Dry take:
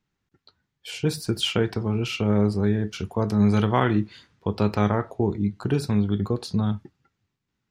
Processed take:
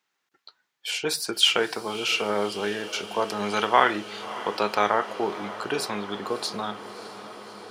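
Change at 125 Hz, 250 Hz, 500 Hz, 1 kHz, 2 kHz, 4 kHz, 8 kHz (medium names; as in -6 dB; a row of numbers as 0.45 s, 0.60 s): -20.5 dB, -10.5 dB, 0.0 dB, +6.0 dB, +6.5 dB, +7.0 dB, +7.0 dB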